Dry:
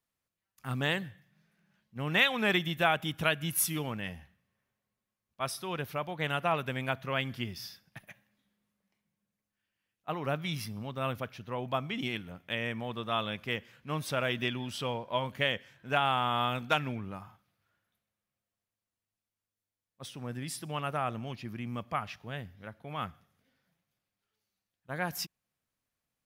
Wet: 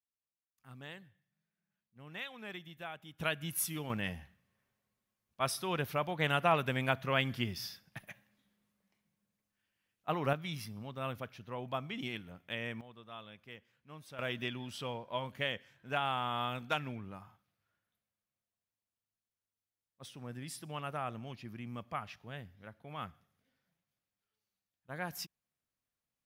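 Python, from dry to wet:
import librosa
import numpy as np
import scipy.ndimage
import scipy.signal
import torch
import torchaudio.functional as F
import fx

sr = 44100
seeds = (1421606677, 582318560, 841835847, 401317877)

y = fx.gain(x, sr, db=fx.steps((0.0, -18.0), (3.2, -6.0), (3.9, 1.0), (10.33, -5.5), (12.81, -17.0), (14.19, -6.0)))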